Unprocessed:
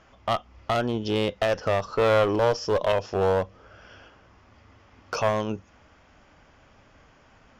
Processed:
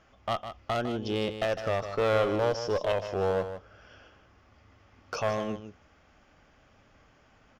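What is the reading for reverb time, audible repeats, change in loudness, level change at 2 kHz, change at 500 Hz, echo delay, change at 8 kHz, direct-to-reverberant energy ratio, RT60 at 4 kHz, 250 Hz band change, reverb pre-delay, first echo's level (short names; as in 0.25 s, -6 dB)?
none, 1, -5.0 dB, -4.5 dB, -4.5 dB, 0.154 s, -4.5 dB, none, none, -4.5 dB, none, -10.0 dB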